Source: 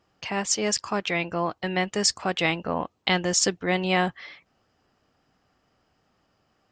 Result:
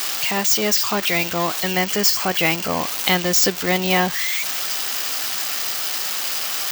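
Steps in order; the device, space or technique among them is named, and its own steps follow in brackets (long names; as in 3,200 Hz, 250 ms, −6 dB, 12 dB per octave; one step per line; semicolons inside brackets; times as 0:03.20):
budget class-D amplifier (gap after every zero crossing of 0.051 ms; spike at every zero crossing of −13.5 dBFS)
0:01.71–0:02.81: notch filter 3,700 Hz, Q 10
level +4 dB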